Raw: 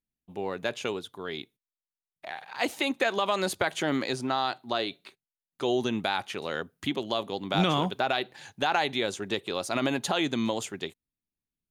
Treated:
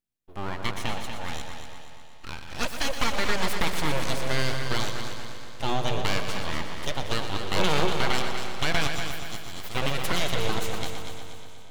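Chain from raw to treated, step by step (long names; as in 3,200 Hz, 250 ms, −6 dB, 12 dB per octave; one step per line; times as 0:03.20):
feedback delay that plays each chunk backwards 109 ms, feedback 79%, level −14 dB
0:08.87–0:09.75: first-order pre-emphasis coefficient 0.8
full-wave rectification
on a send: echo machine with several playback heads 120 ms, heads first and second, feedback 57%, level −10 dB
on the sum: level +2.5 dB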